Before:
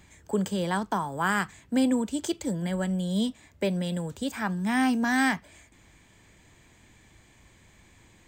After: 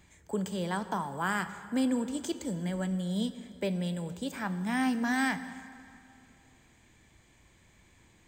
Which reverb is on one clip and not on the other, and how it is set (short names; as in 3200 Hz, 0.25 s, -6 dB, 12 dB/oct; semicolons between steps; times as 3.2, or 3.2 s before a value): plate-style reverb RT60 2.5 s, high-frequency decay 0.75×, DRR 11 dB; gain -5 dB